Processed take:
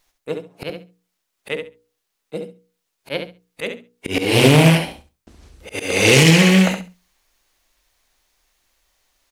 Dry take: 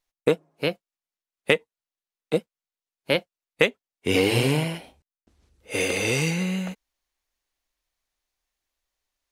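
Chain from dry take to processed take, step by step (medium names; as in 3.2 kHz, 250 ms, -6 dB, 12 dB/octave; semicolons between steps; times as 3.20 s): hum notches 60/120/180/240/300/360/420/480 Hz; slow attack 469 ms; on a send: feedback delay 68 ms, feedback 18%, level -7.5 dB; on the sum: loudness maximiser +16.5 dB; loudspeaker Doppler distortion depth 0.26 ms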